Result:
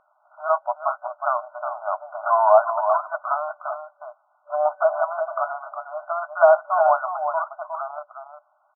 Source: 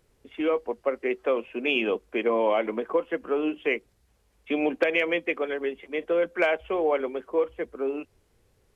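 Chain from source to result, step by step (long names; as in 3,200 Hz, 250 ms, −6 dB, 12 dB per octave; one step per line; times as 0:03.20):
slap from a distant wall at 62 metres, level −8 dB
sine wavefolder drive 5 dB, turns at −9.5 dBFS
brick-wall band-pass 590–1,500 Hz
level +5 dB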